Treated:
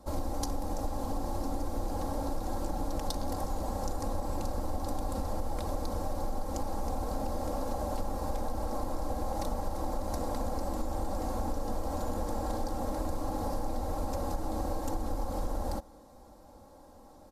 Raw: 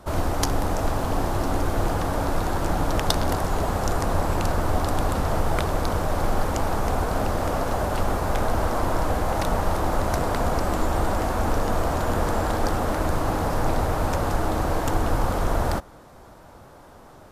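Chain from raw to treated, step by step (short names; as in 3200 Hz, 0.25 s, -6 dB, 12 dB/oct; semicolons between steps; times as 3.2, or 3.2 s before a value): band shelf 2000 Hz -9.5 dB; comb 3.7 ms, depth 67%; compressor, threshold -20 dBFS, peak gain reduction 7.5 dB; gain -8 dB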